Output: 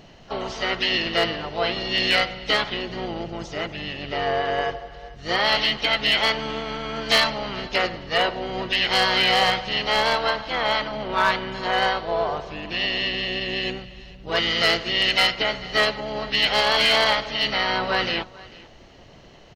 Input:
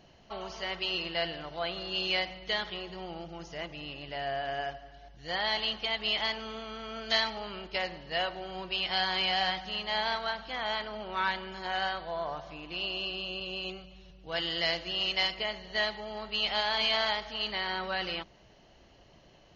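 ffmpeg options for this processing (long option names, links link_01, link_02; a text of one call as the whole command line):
ffmpeg -i in.wav -filter_complex "[0:a]asplit=4[link_01][link_02][link_03][link_04];[link_02]asetrate=29433,aresample=44100,atempo=1.49831,volume=-5dB[link_05];[link_03]asetrate=35002,aresample=44100,atempo=1.25992,volume=-15dB[link_06];[link_04]asetrate=55563,aresample=44100,atempo=0.793701,volume=-14dB[link_07];[link_01][link_05][link_06][link_07]amix=inputs=4:normalize=0,aecho=1:1:446:0.0841,asoftclip=type=hard:threshold=-20dB,volume=9dB" out.wav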